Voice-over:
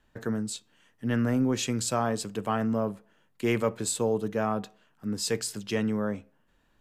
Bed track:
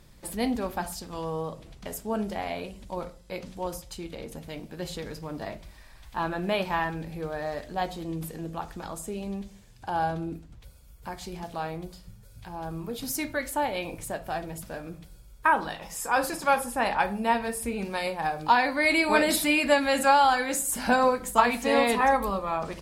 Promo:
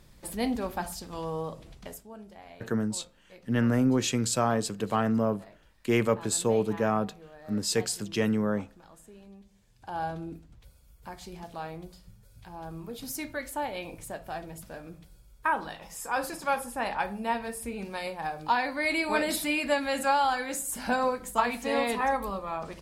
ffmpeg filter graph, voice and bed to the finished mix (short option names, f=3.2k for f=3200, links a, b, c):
-filter_complex "[0:a]adelay=2450,volume=1.5dB[a];[1:a]volume=10dB,afade=t=out:st=1.75:d=0.34:silence=0.177828,afade=t=in:st=9.42:d=0.65:silence=0.266073[b];[a][b]amix=inputs=2:normalize=0"